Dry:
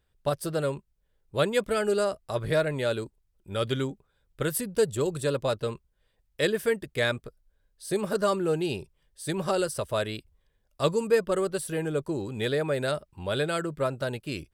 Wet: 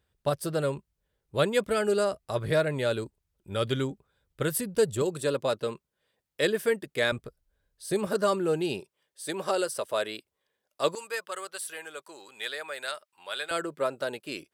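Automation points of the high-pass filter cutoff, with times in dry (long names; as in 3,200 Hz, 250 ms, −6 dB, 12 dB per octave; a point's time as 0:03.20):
55 Hz
from 0:05.02 180 Hz
from 0:07.12 44 Hz
from 0:08.07 160 Hz
from 0:08.80 340 Hz
from 0:10.95 1,100 Hz
from 0:13.51 320 Hz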